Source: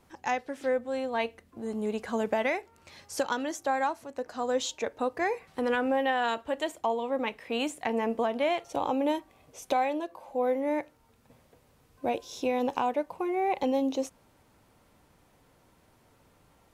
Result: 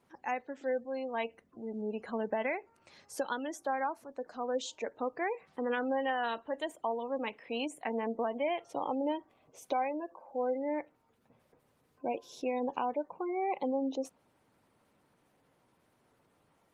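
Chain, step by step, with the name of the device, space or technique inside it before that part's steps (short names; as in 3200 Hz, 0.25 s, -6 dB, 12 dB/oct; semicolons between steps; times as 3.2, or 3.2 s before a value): noise-suppressed video call (HPF 130 Hz 12 dB/oct; spectral gate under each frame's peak -25 dB strong; gain -5 dB; Opus 24 kbps 48000 Hz)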